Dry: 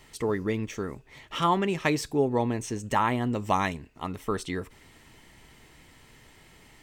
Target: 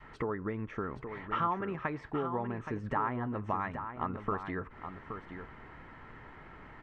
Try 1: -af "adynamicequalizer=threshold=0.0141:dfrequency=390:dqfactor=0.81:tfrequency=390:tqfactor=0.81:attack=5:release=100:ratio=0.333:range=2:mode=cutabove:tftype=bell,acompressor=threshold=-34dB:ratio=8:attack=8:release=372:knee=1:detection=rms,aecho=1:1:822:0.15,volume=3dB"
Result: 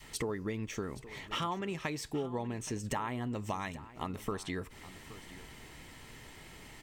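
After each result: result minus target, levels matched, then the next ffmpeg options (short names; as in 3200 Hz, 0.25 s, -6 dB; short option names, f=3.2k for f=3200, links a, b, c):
echo-to-direct -8 dB; 1000 Hz band -3.5 dB
-af "adynamicequalizer=threshold=0.0141:dfrequency=390:dqfactor=0.81:tfrequency=390:tqfactor=0.81:attack=5:release=100:ratio=0.333:range=2:mode=cutabove:tftype=bell,acompressor=threshold=-34dB:ratio=8:attack=8:release=372:knee=1:detection=rms,aecho=1:1:822:0.376,volume=3dB"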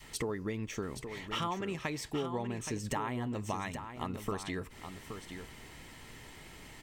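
1000 Hz band -3.5 dB
-af "adynamicequalizer=threshold=0.0141:dfrequency=390:dqfactor=0.81:tfrequency=390:tqfactor=0.81:attack=5:release=100:ratio=0.333:range=2:mode=cutabove:tftype=bell,acompressor=threshold=-34dB:ratio=8:attack=8:release=372:knee=1:detection=rms,lowpass=f=1.4k:t=q:w=2.4,aecho=1:1:822:0.376,volume=3dB"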